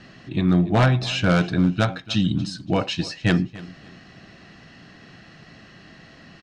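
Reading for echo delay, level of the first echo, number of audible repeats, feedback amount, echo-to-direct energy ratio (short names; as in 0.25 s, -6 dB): 0.285 s, -19.0 dB, 2, 28%, -18.5 dB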